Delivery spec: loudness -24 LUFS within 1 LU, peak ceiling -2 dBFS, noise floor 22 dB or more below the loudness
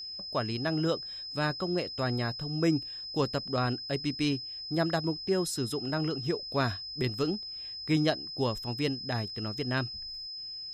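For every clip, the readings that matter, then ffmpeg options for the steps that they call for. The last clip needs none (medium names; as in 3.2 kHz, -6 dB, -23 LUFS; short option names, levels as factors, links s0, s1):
steady tone 5.1 kHz; tone level -38 dBFS; loudness -31.5 LUFS; peak level -14.5 dBFS; loudness target -24.0 LUFS
-> -af "bandreject=f=5100:w=30"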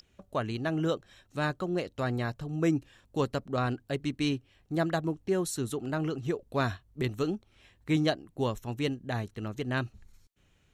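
steady tone not found; loudness -32.0 LUFS; peak level -14.0 dBFS; loudness target -24.0 LUFS
-> -af "volume=2.51"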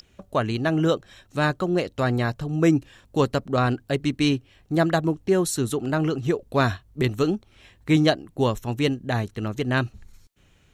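loudness -24.0 LUFS; peak level -6.0 dBFS; noise floor -59 dBFS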